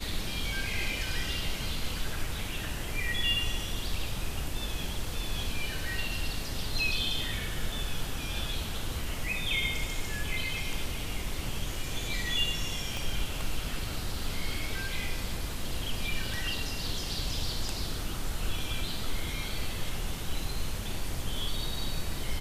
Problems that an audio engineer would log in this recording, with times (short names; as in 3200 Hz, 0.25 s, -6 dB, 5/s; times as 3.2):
12.97 pop